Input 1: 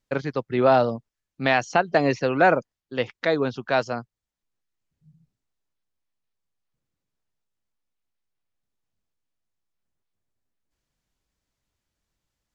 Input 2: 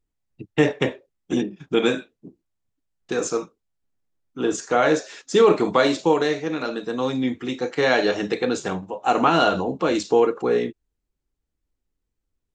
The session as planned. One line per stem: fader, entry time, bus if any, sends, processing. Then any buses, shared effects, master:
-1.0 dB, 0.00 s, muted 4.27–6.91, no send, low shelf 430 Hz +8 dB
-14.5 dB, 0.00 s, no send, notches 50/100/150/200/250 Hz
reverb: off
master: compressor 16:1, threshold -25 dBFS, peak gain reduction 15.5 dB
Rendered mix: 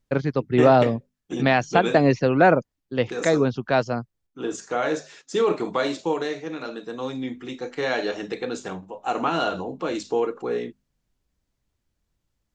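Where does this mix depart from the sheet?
stem 2 -14.5 dB -> -6.0 dB; master: missing compressor 16:1, threshold -25 dBFS, peak gain reduction 15.5 dB

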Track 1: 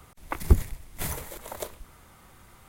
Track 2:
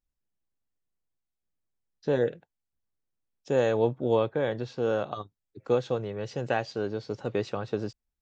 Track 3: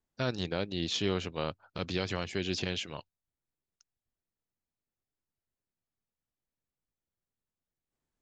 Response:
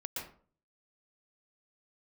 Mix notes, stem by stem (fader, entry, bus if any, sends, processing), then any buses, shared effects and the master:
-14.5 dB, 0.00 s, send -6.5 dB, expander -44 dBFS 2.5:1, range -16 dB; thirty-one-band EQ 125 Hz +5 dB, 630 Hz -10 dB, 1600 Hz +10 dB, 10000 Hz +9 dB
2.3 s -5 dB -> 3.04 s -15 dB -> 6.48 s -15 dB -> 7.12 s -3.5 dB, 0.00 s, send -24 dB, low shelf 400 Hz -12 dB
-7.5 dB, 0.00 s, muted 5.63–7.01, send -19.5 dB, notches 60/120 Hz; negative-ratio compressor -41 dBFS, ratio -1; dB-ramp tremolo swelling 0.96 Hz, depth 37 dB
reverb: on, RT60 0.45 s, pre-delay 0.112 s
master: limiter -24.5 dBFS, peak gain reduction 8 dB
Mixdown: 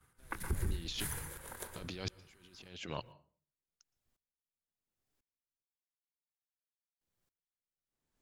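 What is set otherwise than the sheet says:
stem 1: send -6.5 dB -> -0.5 dB; stem 2: muted; stem 3 -7.5 dB -> +3.0 dB

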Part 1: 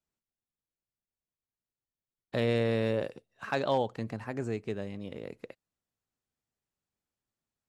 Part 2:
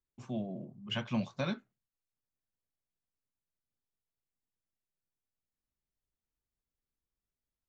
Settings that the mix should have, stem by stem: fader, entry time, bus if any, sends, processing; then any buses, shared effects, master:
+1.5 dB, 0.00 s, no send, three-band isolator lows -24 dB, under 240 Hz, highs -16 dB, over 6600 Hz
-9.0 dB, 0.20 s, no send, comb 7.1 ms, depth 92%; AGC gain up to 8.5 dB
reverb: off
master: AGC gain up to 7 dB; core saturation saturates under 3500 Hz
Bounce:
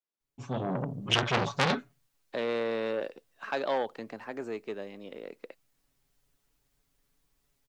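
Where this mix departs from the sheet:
stem 1 +1.5 dB -> -6.5 dB; stem 2 -9.0 dB -> -0.5 dB

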